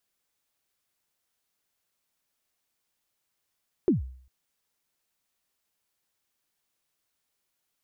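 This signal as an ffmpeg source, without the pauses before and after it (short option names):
-f lavfi -i "aevalsrc='0.168*pow(10,-3*t/0.55)*sin(2*PI*(410*0.138/log(64/410)*(exp(log(64/410)*min(t,0.138)/0.138)-1)+64*max(t-0.138,0)))':d=0.4:s=44100"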